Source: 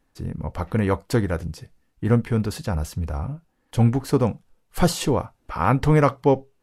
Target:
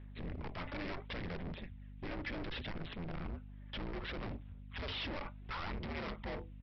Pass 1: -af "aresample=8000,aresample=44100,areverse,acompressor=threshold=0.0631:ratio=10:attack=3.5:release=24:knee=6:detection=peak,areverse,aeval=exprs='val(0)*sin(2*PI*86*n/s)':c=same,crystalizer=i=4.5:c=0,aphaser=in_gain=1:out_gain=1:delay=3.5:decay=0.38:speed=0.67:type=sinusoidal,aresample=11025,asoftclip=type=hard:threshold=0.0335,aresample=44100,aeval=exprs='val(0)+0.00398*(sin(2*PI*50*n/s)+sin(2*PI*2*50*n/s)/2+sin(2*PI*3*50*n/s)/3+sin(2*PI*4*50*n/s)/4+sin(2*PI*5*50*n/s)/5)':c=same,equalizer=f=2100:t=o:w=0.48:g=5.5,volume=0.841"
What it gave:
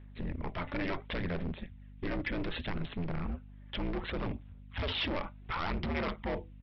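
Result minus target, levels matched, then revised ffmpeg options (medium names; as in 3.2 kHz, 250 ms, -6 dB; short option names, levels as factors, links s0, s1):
hard clipper: distortion -4 dB
-af "aresample=8000,aresample=44100,areverse,acompressor=threshold=0.0631:ratio=10:attack=3.5:release=24:knee=6:detection=peak,areverse,aeval=exprs='val(0)*sin(2*PI*86*n/s)':c=same,crystalizer=i=4.5:c=0,aphaser=in_gain=1:out_gain=1:delay=3.5:decay=0.38:speed=0.67:type=sinusoidal,aresample=11025,asoftclip=type=hard:threshold=0.0112,aresample=44100,aeval=exprs='val(0)+0.00398*(sin(2*PI*50*n/s)+sin(2*PI*2*50*n/s)/2+sin(2*PI*3*50*n/s)/3+sin(2*PI*4*50*n/s)/4+sin(2*PI*5*50*n/s)/5)':c=same,equalizer=f=2100:t=o:w=0.48:g=5.5,volume=0.841"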